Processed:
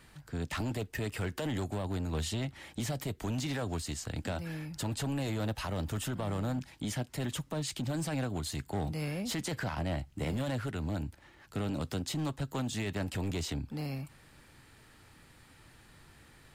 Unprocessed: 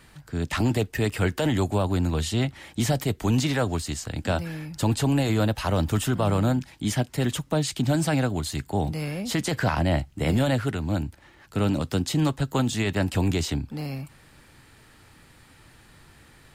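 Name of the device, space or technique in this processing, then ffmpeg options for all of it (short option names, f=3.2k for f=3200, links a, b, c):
limiter into clipper: -af "alimiter=limit=-20dB:level=0:latency=1:release=159,asoftclip=type=hard:threshold=-24dB,volume=-5dB"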